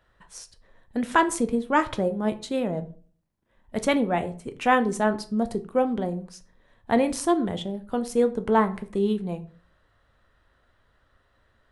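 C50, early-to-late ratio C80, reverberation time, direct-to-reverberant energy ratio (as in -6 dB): 17.0 dB, 21.0 dB, 0.45 s, 9.0 dB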